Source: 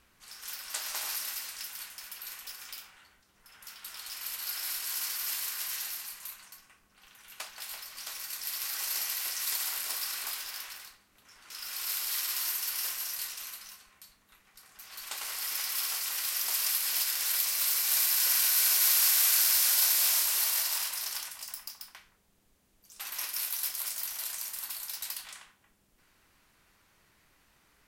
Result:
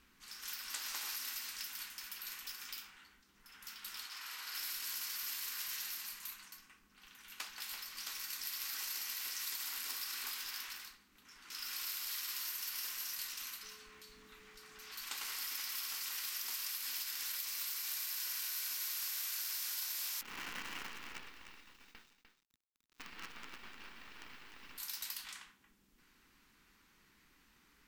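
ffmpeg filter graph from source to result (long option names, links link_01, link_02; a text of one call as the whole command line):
ffmpeg -i in.wav -filter_complex "[0:a]asettb=1/sr,asplit=3[link_01][link_02][link_03];[link_01]atrim=end=4.064[link_04];[link_02]atrim=start=4.06:end=4.55,asetpts=PTS-STARTPTS,afade=type=in:duration=0.004:curve=qsin,afade=type=out:start_time=0.486:duration=0.004:curve=qsin,bandpass=frequency=1000:width_type=q:width=0.69,aemphasis=mode=production:type=cd,asplit=2[link_05][link_06];[link_06]adelay=48,volume=-2dB[link_07];[link_05][link_07]amix=inputs=2:normalize=0,atrim=end_sample=21609[link_08];[link_03]atrim=start=4.546[link_09];[link_04][link_08]acrossfade=duration=0.004:curve1=hsin:curve2=qsin[link_10];[link_10][link_09]acrossfade=duration=0.004:curve1=qsin:curve2=hsin,asettb=1/sr,asplit=3[link_11][link_12][link_13];[link_11]atrim=end=13.634[link_14];[link_12]atrim=start=13.63:end=14.92,asetpts=PTS-STARTPTS,afade=type=in:duration=0.004:curve=qsin,afade=type=out:start_time=1.286:duration=0.004:curve=qsin,aeval=exprs='val(0)+0.5*0.00188*sgn(val(0))':channel_layout=same,highshelf=frequency=11000:gain=-12,aeval=exprs='val(0)+0.001*sin(2*PI*430*n/s)':channel_layout=same[link_15];[link_13]atrim=start=14.916[link_16];[link_14][link_15]acrossfade=duration=0.004:curve1=hsin:curve2=qsin[link_17];[link_17][link_16]acrossfade=duration=0.004:curve1=qsin:curve2=hsin,asettb=1/sr,asplit=3[link_18][link_19][link_20];[link_18]atrim=end=20.214[link_21];[link_19]atrim=start=20.21:end=24.78,asetpts=PTS-STARTPTS,afade=type=in:duration=0.004:curve=qsin,afade=type=out:start_time=4.566:duration=0.004:curve=qsin,lowpass=frequency=3200:width_type=q:width=0.5098,lowpass=frequency=3200:width_type=q:width=0.6013,lowpass=frequency=3200:width_type=q:width=0.9,lowpass=frequency=3200:width_type=q:width=2.563,afreqshift=-3800,acrusher=bits=7:dc=4:mix=0:aa=0.000001,aecho=1:1:300:0.376,atrim=end_sample=201537[link_22];[link_20]atrim=start=24.776[link_23];[link_21][link_22]acrossfade=duration=0.004:curve1=hsin:curve2=qsin[link_24];[link_24][link_23]acrossfade=duration=0.004:curve1=qsin:curve2=hsin,equalizer=frequency=100:width_type=o:width=0.67:gain=-9,equalizer=frequency=250:width_type=o:width=0.67:gain=5,equalizer=frequency=630:width_type=o:width=0.67:gain=-11,equalizer=frequency=10000:width_type=o:width=0.67:gain=-6,acompressor=threshold=-37dB:ratio=6,volume=-1dB" out.wav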